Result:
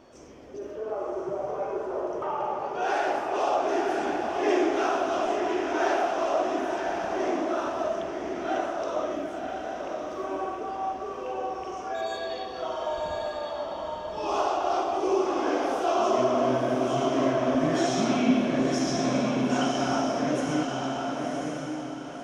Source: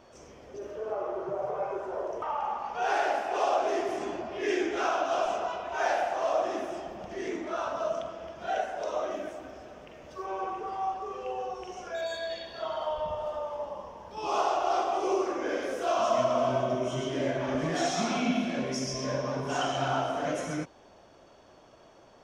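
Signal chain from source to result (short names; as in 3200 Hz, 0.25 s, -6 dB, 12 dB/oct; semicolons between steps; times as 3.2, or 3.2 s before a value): bell 290 Hz +7.5 dB 0.73 oct; diffused feedback echo 1.045 s, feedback 40%, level -3 dB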